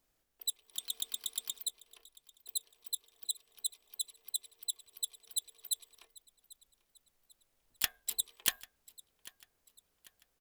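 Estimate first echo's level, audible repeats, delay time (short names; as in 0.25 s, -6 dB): -21.0 dB, 2, 0.793 s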